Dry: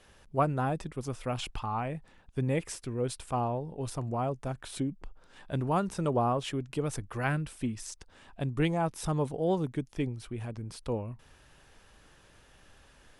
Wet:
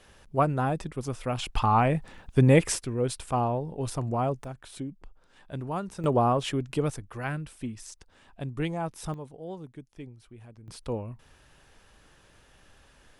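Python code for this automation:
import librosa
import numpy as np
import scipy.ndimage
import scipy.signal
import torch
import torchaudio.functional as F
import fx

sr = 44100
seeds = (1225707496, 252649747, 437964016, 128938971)

y = fx.gain(x, sr, db=fx.steps((0.0, 3.0), (1.56, 11.0), (2.79, 4.0), (4.44, -4.0), (6.04, 4.5), (6.9, -2.5), (9.14, -11.0), (10.68, 0.5)))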